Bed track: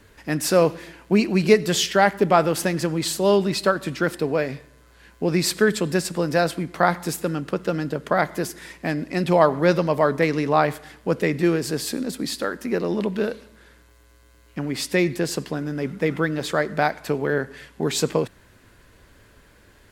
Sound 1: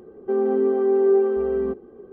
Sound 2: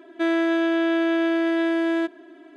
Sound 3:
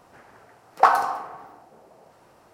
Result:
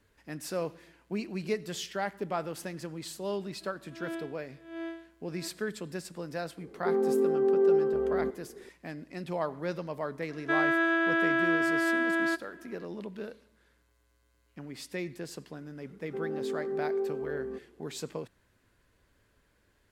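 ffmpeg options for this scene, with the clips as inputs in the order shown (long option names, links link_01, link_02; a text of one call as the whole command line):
ffmpeg -i bed.wav -i cue0.wav -i cue1.wav -filter_complex "[2:a]asplit=2[link_01][link_02];[1:a]asplit=2[link_03][link_04];[0:a]volume=-16dB[link_05];[link_01]aeval=exprs='val(0)*pow(10,-30*(0.5-0.5*cos(2*PI*1.4*n/s))/20)':channel_layout=same[link_06];[link_02]equalizer=frequency=1500:width=1.7:gain=13.5[link_07];[link_06]atrim=end=2.56,asetpts=PTS-STARTPTS,volume=-14.5dB,afade=type=in:duration=0.004:curve=hsin,afade=type=out:start_time=2.556:duration=0.004:curve=hsin,adelay=150381S[link_08];[link_03]atrim=end=2.12,asetpts=PTS-STARTPTS,volume=-6dB,afade=type=in:duration=0.004:curve=hsin,afade=type=out:start_time=2.116:duration=0.004:curve=hsin,adelay=6570[link_09];[link_07]atrim=end=2.56,asetpts=PTS-STARTPTS,volume=-8.5dB,afade=type=in:duration=0.004:curve=hsin,afade=type=out:start_time=2.556:duration=0.004:curve=hsin,adelay=10290[link_10];[link_04]atrim=end=2.12,asetpts=PTS-STARTPTS,volume=-14dB,afade=type=in:duration=0.004:curve=hsin,afade=type=out:start_time=2.116:duration=0.004:curve=hsin,adelay=15850[link_11];[link_05][link_08][link_09][link_10][link_11]amix=inputs=5:normalize=0" out.wav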